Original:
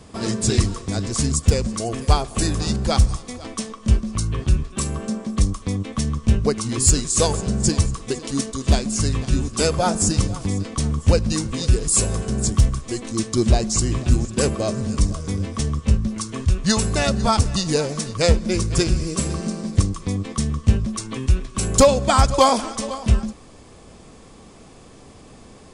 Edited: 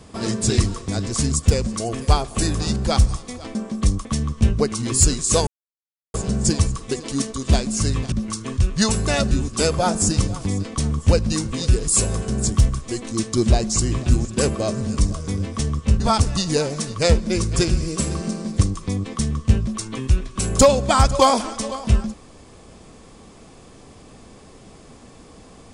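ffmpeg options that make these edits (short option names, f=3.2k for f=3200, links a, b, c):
-filter_complex "[0:a]asplit=7[a][b][c][d][e][f][g];[a]atrim=end=3.552[h];[b]atrim=start=5.098:end=5.602[i];[c]atrim=start=5.908:end=7.33,asetpts=PTS-STARTPTS,afade=t=out:st=1.418:d=0.004:c=hsin,apad=pad_dur=0.67[j];[d]atrim=start=7.33:end=9.312,asetpts=PTS-STARTPTS,afade=t=in:d=0.004:c=hsin[k];[e]atrim=start=15.998:end=17.192[l];[f]atrim=start=9.308:end=16.002[m];[g]atrim=start=17.188[n];[h][i]acrossfade=d=0.004:c1=hsin:c2=hsin[o];[j][k]concat=n=2:v=0:a=1[p];[o][p]acrossfade=d=0.004:c1=hsin:c2=hsin[q];[q][l]acrossfade=d=0.004:c1=hsin:c2=hsin[r];[r][m]acrossfade=d=0.004:c1=hsin:c2=hsin[s];[s][n]acrossfade=d=0.004:c1=hsin:c2=hsin"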